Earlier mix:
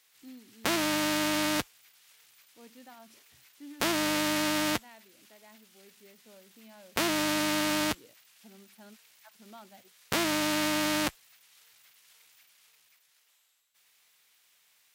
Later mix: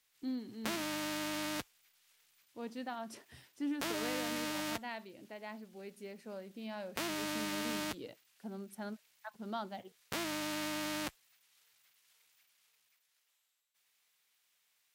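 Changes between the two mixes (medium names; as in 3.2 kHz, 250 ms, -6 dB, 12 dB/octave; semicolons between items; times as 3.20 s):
speech +10.0 dB; background -10.0 dB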